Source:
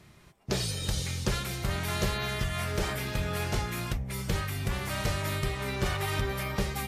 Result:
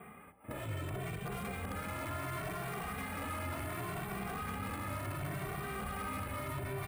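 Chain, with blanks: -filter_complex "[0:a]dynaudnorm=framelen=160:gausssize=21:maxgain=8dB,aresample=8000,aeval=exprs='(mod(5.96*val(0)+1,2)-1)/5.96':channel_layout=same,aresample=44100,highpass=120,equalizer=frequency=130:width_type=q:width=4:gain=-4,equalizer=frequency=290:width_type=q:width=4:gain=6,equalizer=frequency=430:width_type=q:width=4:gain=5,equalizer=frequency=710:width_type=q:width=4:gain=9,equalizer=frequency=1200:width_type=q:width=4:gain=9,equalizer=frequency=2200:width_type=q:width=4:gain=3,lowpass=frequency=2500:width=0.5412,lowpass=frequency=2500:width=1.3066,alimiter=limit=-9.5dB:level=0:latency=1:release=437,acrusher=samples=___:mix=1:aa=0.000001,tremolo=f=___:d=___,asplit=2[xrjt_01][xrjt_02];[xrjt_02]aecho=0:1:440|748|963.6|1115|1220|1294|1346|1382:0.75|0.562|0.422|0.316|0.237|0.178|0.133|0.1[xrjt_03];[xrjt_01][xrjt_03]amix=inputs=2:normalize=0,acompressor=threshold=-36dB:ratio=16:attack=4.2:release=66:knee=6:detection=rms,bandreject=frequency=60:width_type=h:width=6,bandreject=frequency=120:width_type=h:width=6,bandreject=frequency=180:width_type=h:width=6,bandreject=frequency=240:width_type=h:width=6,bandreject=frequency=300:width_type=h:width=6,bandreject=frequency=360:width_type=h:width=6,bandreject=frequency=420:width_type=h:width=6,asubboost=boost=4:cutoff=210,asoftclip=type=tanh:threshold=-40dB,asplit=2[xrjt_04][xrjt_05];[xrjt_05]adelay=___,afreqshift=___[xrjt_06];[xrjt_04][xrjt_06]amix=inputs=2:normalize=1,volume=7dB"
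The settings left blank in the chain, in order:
4, 1.4, 0.35, 2.1, 0.69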